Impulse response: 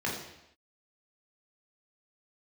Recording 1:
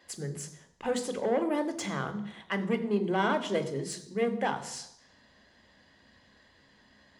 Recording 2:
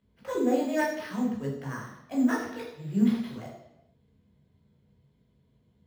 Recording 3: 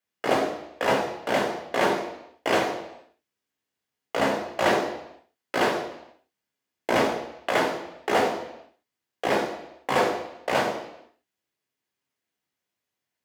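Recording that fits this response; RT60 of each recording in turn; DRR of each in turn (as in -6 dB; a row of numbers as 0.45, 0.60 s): 2; not exponential, not exponential, not exponential; 8.5, -4.0, 0.5 dB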